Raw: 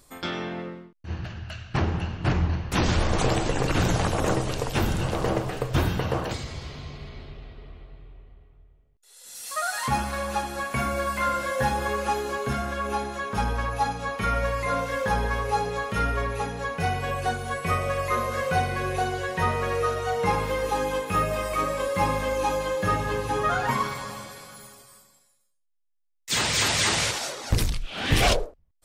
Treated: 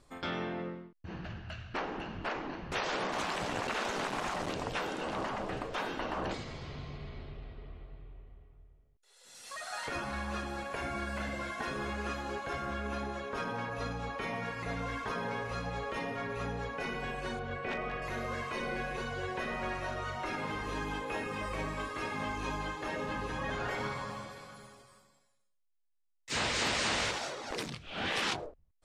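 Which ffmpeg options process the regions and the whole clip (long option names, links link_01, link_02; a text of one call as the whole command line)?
ffmpeg -i in.wav -filter_complex "[0:a]asettb=1/sr,asplit=3[link_01][link_02][link_03];[link_01]atrim=end=3.124[link_04];[link_02]atrim=start=3.12:end=4.52,asetpts=PTS-STARTPTS,afade=type=in:duration=0.004:curve=qsin,afade=type=out:start_time=1.396:duration=0.004:curve=qsin,aeval=exprs='val(0)*gte(abs(val(0)),0.0422)':channel_layout=same,afreqshift=-28[link_05];[link_03]atrim=start=4.516[link_06];[link_04][link_05]acrossfade=duration=0.004:curve1=hsin:curve2=qsin[link_07];[link_07][link_06]acrossfade=duration=0.004:curve1=qsin:curve2=hsin,asettb=1/sr,asplit=3[link_08][link_09][link_10];[link_08]atrim=end=17.394[link_11];[link_09]atrim=start=17.39:end=18.02,asetpts=PTS-STARTPTS,afade=type=in:duration=0.004:curve=qsin,afade=type=out:start_time=0.626:duration=0.004:curve=qsin,lowpass=3400,aeval=exprs='0.133*(abs(mod(val(0)/0.133+3,4)-2)-1)':channel_layout=same[link_12];[link_10]atrim=start=18.016[link_13];[link_11][link_12]acrossfade=duration=0.004:curve1=hsin:curve2=qsin[link_14];[link_14][link_13]acrossfade=duration=0.004:curve1=qsin:curve2=hsin,lowpass=9300,afftfilt=real='re*lt(hypot(re,im),0.178)':imag='im*lt(hypot(re,im),0.178)':win_size=1024:overlap=0.75,highshelf=frequency=4800:gain=-11.5,volume=-3.5dB" out.wav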